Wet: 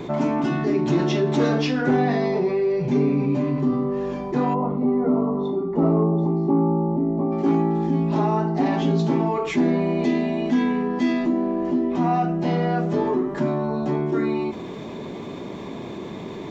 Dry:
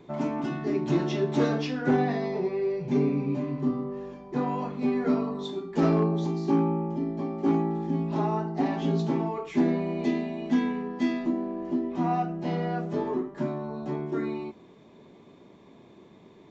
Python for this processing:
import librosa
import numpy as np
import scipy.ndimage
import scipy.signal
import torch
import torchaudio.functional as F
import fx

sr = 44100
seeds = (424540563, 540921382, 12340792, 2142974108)

y = fx.savgol(x, sr, points=65, at=(4.53, 7.31), fade=0.02)
y = fx.env_flatten(y, sr, amount_pct=50)
y = F.gain(torch.from_numpy(y), 2.5).numpy()